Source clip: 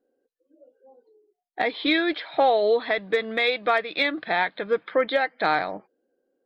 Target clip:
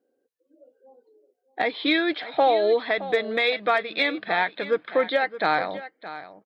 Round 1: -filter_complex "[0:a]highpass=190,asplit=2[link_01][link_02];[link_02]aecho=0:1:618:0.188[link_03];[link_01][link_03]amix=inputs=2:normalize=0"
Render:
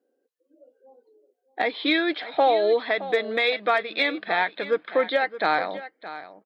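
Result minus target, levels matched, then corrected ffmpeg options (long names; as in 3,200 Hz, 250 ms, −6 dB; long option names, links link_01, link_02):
125 Hz band −3.5 dB
-filter_complex "[0:a]highpass=59,asplit=2[link_01][link_02];[link_02]aecho=0:1:618:0.188[link_03];[link_01][link_03]amix=inputs=2:normalize=0"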